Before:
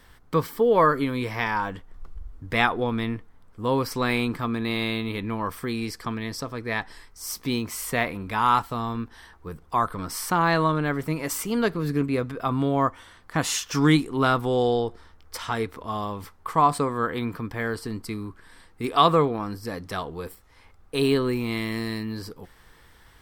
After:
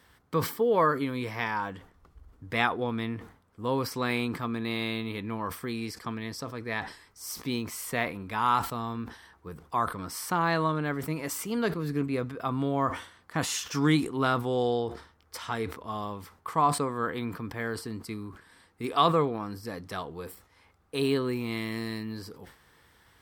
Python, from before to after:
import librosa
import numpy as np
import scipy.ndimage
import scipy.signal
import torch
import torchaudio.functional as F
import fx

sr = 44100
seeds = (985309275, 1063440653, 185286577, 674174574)

y = scipy.signal.sosfilt(scipy.signal.butter(2, 74.0, 'highpass', fs=sr, output='sos'), x)
y = fx.sustainer(y, sr, db_per_s=120.0)
y = y * 10.0 ** (-5.0 / 20.0)